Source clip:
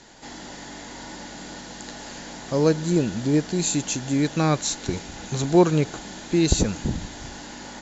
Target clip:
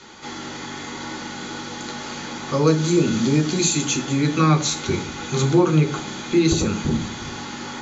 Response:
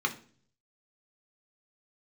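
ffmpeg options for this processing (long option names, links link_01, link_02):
-filter_complex "[0:a]asettb=1/sr,asplit=3[link_01][link_02][link_03];[link_01]atrim=end=2.674[link_04];[link_02]atrim=start=2.67:end=3.85,asetpts=PTS-STARTPTS,afade=type=in:duration=0.004:curve=qsin,afade=type=out:start_time=1.176:duration=0.004:curve=qsin,highshelf=frequency=4200:gain=8[link_05];[link_03]atrim=start=3.846[link_06];[link_04][link_05]acrossfade=duration=0.004:curve1=hsin:curve2=qsin[link_07];[link_07][link_06]acrossfade=duration=0.004:curve1=qsin:curve2=hsin,acompressor=threshold=-21dB:ratio=3[link_08];[1:a]atrim=start_sample=2205[link_09];[link_08][link_09]afir=irnorm=-1:irlink=0"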